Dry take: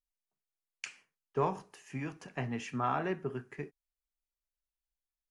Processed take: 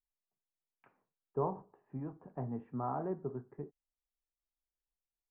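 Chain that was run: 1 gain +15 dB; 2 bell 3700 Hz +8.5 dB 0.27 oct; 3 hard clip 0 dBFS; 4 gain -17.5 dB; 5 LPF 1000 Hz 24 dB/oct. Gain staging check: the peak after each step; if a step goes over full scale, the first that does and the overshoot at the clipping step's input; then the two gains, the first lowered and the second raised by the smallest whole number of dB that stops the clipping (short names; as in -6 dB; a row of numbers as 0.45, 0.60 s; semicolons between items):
-3.0, -3.0, -3.0, -20.5, -21.0 dBFS; no overload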